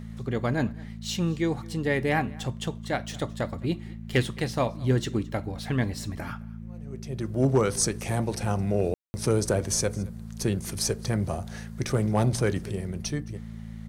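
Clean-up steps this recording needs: clip repair -14 dBFS; de-hum 55.3 Hz, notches 4; room tone fill 8.94–9.14 s; inverse comb 216 ms -23.5 dB

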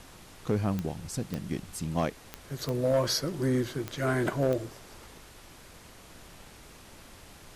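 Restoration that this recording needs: clip repair -19 dBFS; de-click; noise print and reduce 24 dB

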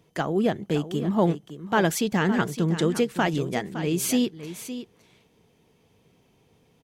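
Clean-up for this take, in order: inverse comb 562 ms -12 dB

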